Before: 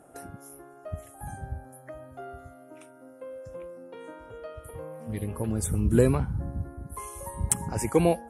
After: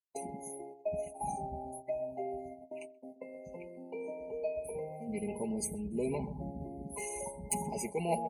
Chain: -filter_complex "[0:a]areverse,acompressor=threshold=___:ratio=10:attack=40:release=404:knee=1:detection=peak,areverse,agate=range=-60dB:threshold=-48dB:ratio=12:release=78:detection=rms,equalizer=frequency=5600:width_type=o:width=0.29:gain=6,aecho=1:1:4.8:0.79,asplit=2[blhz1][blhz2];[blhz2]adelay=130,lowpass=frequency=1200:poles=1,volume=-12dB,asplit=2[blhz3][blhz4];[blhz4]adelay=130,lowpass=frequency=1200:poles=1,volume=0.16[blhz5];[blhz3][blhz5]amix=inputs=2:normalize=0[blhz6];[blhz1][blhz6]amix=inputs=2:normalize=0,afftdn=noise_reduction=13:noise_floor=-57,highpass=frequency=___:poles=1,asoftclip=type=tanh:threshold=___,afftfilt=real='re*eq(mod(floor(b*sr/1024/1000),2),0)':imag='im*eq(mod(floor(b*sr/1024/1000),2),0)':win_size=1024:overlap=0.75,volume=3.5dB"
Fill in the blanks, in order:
-33dB, 320, -25dB